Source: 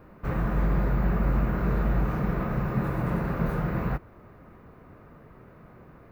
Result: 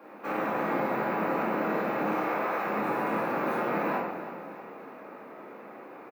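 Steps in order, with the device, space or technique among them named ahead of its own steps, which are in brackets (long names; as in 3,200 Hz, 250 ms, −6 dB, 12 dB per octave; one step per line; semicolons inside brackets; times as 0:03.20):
0:02.14–0:02.63: high-pass filter 300 Hz → 740 Hz 12 dB per octave
laptop speaker (high-pass filter 280 Hz 24 dB per octave; parametric band 850 Hz +6 dB 0.42 octaves; parametric band 2,400 Hz +4.5 dB 0.33 octaves; brickwall limiter −27.5 dBFS, peak gain reduction 7 dB)
repeating echo 314 ms, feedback 56%, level −13 dB
rectangular room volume 380 cubic metres, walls mixed, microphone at 2.3 metres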